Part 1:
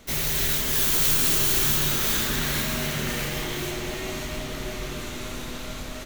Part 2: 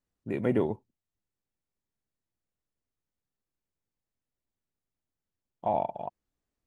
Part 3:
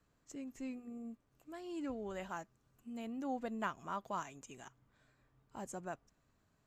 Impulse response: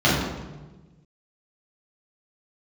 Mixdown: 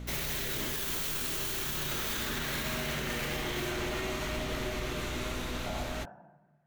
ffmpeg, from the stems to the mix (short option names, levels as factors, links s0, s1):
-filter_complex "[0:a]bass=f=250:g=-5,treble=f=4000:g=-5,aeval=exprs='val(0)+0.01*(sin(2*PI*60*n/s)+sin(2*PI*2*60*n/s)/2+sin(2*PI*3*60*n/s)/3+sin(2*PI*4*60*n/s)/4+sin(2*PI*5*60*n/s)/5)':c=same,volume=1[s0];[1:a]volume=0.178,asplit=2[s1][s2];[s2]volume=0.0631[s3];[2:a]bandpass=f=1700:t=q:w=2.6:csg=0,volume=0.2,asplit=2[s4][s5];[s5]volume=0.668[s6];[3:a]atrim=start_sample=2205[s7];[s3][s6]amix=inputs=2:normalize=0[s8];[s8][s7]afir=irnorm=-1:irlink=0[s9];[s0][s1][s4][s9]amix=inputs=4:normalize=0,alimiter=level_in=1.06:limit=0.0631:level=0:latency=1:release=57,volume=0.944"